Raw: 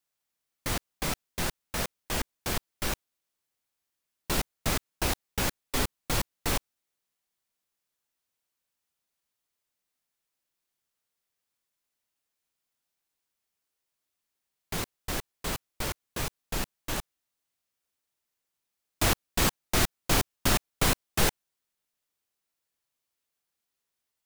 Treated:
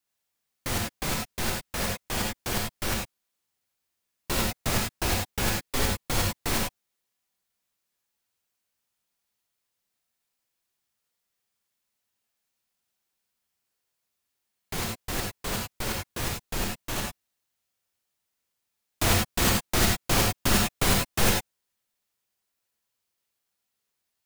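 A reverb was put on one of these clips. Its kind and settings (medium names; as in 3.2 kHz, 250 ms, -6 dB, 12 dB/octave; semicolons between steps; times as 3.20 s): gated-style reverb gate 120 ms rising, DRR 0 dB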